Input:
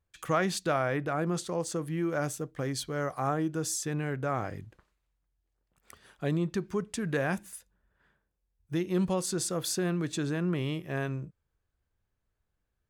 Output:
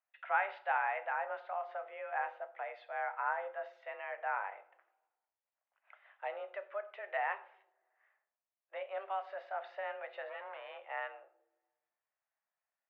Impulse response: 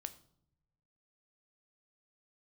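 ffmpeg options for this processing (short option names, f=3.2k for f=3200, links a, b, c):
-filter_complex "[0:a]asettb=1/sr,asplit=3[a][b][c];[a]atrim=end=10.294[d];[b]atrim=start=10.29:end=10.78,asetpts=PTS-STARTPTS,afade=t=in:d=0.004:c=qsin,afade=t=out:st=0.486:d=0.004:c=qsin,asoftclip=type=hard:threshold=-31.5dB[e];[c]atrim=start=10.776[f];[d][e]acrossfade=d=0.004:c1=hsin:c2=qsin[g];[g][f]acrossfade=d=0.004:c1=qsin:c2=hsin[h];[1:a]atrim=start_sample=2205[i];[h][i]afir=irnorm=-1:irlink=0,highpass=f=430:t=q:w=0.5412,highpass=f=430:t=q:w=1.307,lowpass=f=2.5k:t=q:w=0.5176,lowpass=f=2.5k:t=q:w=0.7071,lowpass=f=2.5k:t=q:w=1.932,afreqshift=200"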